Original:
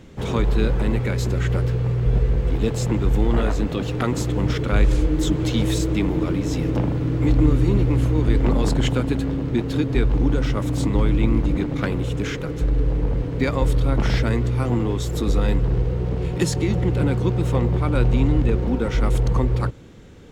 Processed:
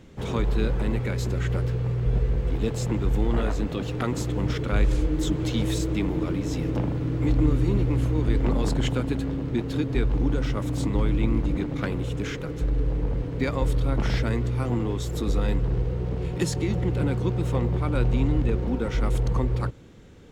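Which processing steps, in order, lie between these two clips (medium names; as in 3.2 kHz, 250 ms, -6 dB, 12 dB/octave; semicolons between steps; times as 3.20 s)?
10.85–12.32 s: added noise brown -56 dBFS; trim -4.5 dB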